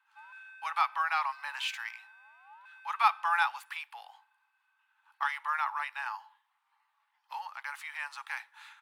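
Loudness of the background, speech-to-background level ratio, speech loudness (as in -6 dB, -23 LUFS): -52.5 LUFS, 19.5 dB, -33.0 LUFS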